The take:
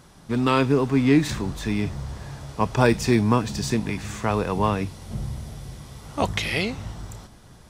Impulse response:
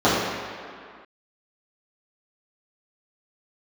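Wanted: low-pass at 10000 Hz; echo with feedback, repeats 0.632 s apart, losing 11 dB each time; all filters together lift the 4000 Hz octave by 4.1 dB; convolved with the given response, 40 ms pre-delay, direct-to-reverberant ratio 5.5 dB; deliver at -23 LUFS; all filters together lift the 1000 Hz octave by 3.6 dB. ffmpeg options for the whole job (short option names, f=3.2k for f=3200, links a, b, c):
-filter_complex "[0:a]lowpass=10k,equalizer=f=1k:t=o:g=4,equalizer=f=4k:t=o:g=5,aecho=1:1:632|1264|1896:0.282|0.0789|0.0221,asplit=2[a][b];[1:a]atrim=start_sample=2205,adelay=40[c];[b][c]afir=irnorm=-1:irlink=0,volume=-29.5dB[d];[a][d]amix=inputs=2:normalize=0,volume=-2dB"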